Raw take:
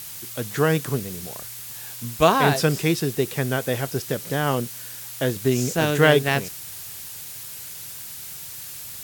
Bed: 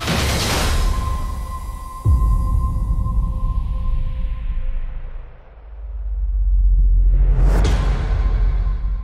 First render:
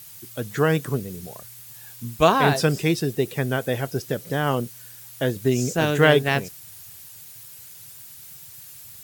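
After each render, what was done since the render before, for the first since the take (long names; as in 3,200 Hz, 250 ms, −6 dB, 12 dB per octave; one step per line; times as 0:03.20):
broadband denoise 9 dB, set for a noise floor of −37 dBFS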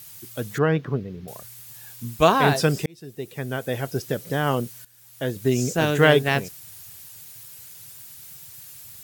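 0:00.58–0:01.28: high-frequency loss of the air 280 metres
0:02.86–0:03.98: fade in linear
0:04.85–0:05.53: fade in, from −16 dB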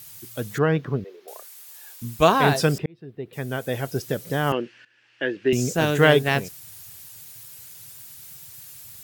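0:01.04–0:02.02: elliptic high-pass filter 380 Hz, stop band 80 dB
0:02.78–0:03.33: high-frequency loss of the air 420 metres
0:04.52–0:05.53: loudspeaker in its box 300–4,000 Hz, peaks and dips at 330 Hz +10 dB, 710 Hz −5 dB, 1,100 Hz −4 dB, 1,700 Hz +10 dB, 2,700 Hz +10 dB, 3,800 Hz −7 dB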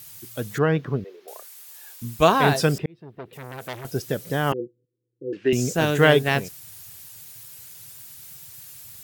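0:02.96–0:03.85: saturating transformer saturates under 2,200 Hz
0:04.53–0:05.33: Chebyshev low-pass with heavy ripple 510 Hz, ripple 9 dB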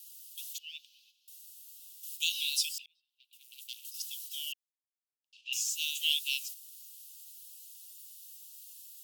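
noise gate −36 dBFS, range −8 dB
Butterworth high-pass 2,700 Hz 96 dB per octave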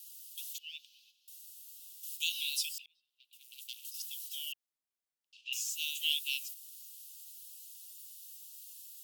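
dynamic equaliser 5,600 Hz, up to −5 dB, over −45 dBFS, Q 0.71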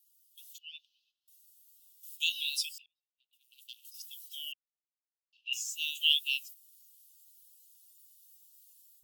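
automatic gain control gain up to 5.5 dB
every bin expanded away from the loudest bin 1.5 to 1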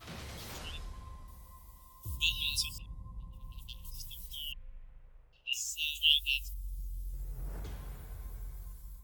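mix in bed −26.5 dB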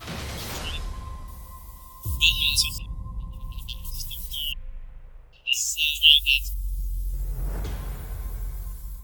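level +11.5 dB
brickwall limiter −1 dBFS, peak gain reduction 1 dB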